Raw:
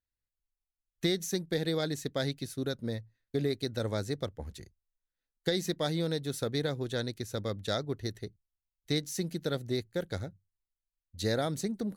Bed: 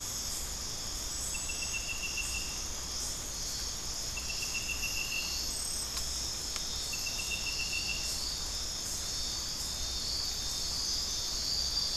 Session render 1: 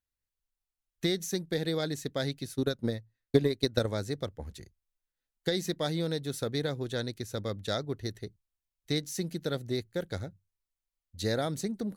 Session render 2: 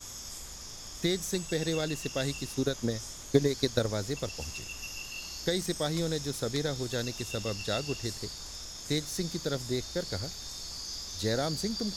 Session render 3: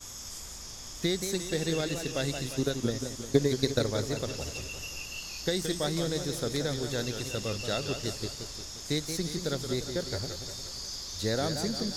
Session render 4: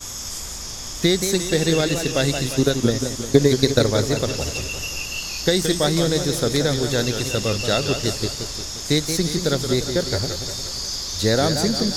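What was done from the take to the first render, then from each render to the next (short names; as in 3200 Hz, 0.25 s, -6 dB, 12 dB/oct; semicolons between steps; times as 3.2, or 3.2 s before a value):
2.55–3.86 transient shaper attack +10 dB, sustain -5 dB
add bed -6 dB
warbling echo 0.176 s, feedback 56%, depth 147 cents, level -8 dB
gain +11 dB; limiter -1 dBFS, peak gain reduction 2.5 dB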